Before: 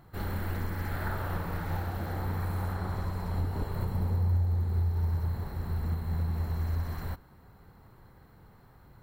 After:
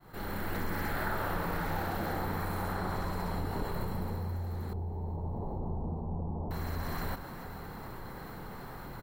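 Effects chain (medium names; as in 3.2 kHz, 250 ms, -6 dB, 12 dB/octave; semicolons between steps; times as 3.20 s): fade-in on the opening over 0.70 s; 4.73–6.51 s: steep low-pass 950 Hz 48 dB/octave; feedback delay 427 ms, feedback 57%, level -23.5 dB; gain riding within 3 dB 0.5 s; peaking EQ 77 Hz -12.5 dB 1.4 oct; level flattener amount 50%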